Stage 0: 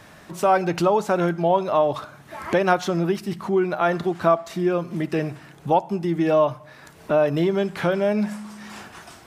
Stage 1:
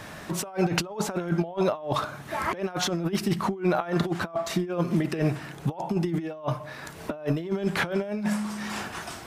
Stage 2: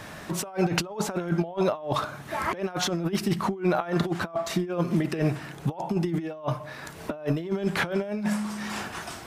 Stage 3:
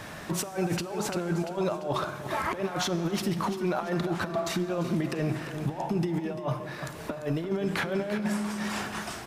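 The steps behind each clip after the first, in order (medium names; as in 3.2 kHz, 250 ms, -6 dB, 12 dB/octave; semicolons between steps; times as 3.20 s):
compressor with a negative ratio -26 dBFS, ratio -0.5
no audible change
feedback delay 344 ms, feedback 40%, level -12.5 dB; peak limiter -19.5 dBFS, peak gain reduction 11.5 dB; Schroeder reverb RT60 3.9 s, combs from 33 ms, DRR 14 dB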